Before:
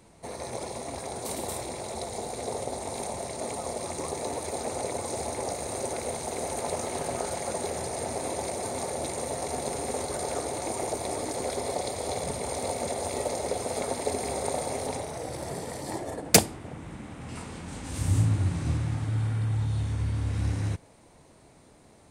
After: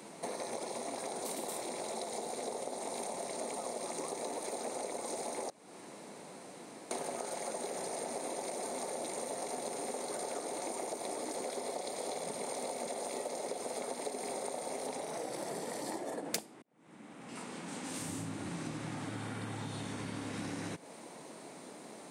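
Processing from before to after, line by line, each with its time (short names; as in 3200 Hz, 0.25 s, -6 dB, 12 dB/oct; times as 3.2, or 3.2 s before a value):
5.5–6.91 room tone
16.62–19.43 fade in linear
whole clip: HPF 190 Hz 24 dB/oct; compressor 6:1, threshold -45 dBFS; gain +7.5 dB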